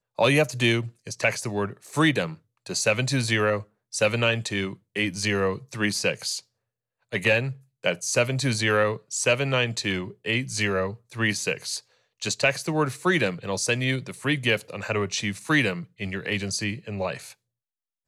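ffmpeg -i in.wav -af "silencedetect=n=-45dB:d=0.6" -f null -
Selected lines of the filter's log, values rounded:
silence_start: 6.41
silence_end: 7.12 | silence_duration: 0.72
silence_start: 17.33
silence_end: 18.07 | silence_duration: 0.74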